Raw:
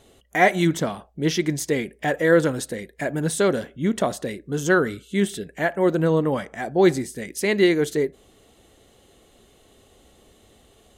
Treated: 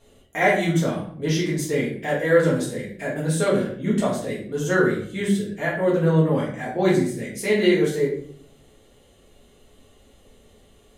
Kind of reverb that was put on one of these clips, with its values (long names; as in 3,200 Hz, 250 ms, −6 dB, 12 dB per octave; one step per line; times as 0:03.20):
rectangular room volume 76 cubic metres, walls mixed, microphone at 1.7 metres
level −8.5 dB